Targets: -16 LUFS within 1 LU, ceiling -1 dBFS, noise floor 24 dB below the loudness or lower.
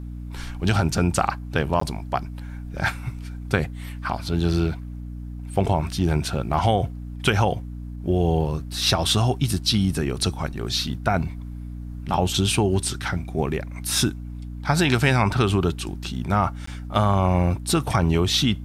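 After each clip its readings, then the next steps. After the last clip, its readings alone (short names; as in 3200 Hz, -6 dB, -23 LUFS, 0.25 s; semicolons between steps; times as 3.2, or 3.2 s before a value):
dropouts 2; longest dropout 14 ms; hum 60 Hz; harmonics up to 300 Hz; hum level -31 dBFS; loudness -23.0 LUFS; peak -5.0 dBFS; loudness target -16.0 LUFS
-> interpolate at 1.8/16.66, 14 ms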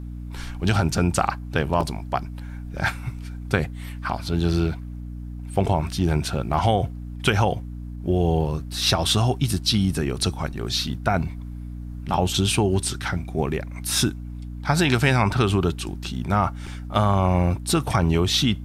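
dropouts 0; hum 60 Hz; harmonics up to 300 Hz; hum level -31 dBFS
-> de-hum 60 Hz, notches 5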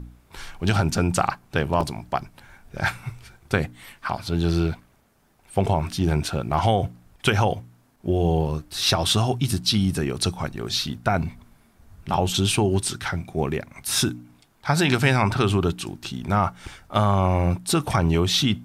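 hum none; loudness -23.5 LUFS; peak -5.0 dBFS; loudness target -16.0 LUFS
-> gain +7.5 dB; limiter -1 dBFS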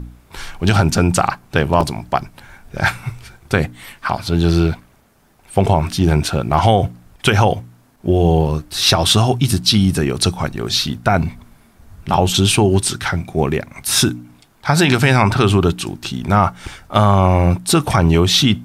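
loudness -16.0 LUFS; peak -1.0 dBFS; noise floor -52 dBFS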